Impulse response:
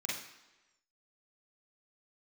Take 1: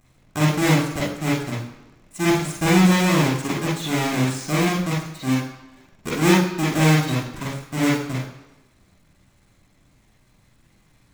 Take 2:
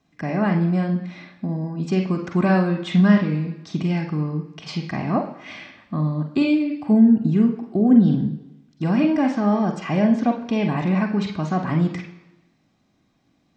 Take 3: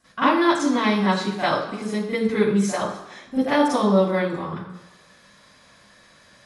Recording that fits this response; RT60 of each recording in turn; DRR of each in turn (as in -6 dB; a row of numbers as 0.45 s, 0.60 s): 1; 1.1 s, 1.1 s, 1.1 s; -6.5 dB, 3.0 dB, -15.0 dB